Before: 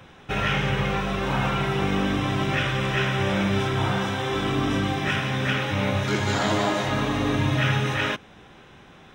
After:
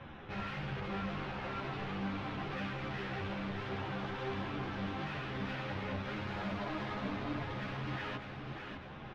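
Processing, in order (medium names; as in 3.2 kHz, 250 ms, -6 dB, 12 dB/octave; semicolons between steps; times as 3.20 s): band-stop 430 Hz, Q 12; saturation -38.5 dBFS, distortion -4 dB; distance through air 300 m; feedback delay 601 ms, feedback 45%, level -6.5 dB; three-phase chorus; trim +4 dB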